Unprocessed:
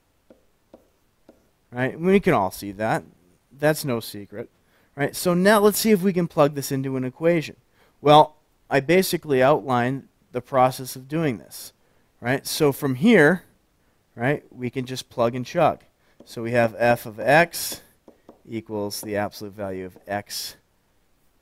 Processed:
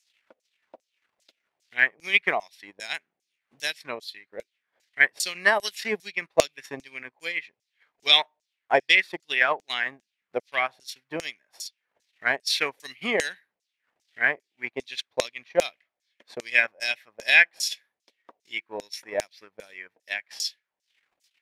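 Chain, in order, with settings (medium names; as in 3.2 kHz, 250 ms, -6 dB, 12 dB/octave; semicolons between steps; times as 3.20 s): transient shaper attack +9 dB, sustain -12 dB; LFO band-pass saw down 2.5 Hz 600–7000 Hz; resonant high shelf 1.6 kHz +8.5 dB, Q 1.5; trim -1 dB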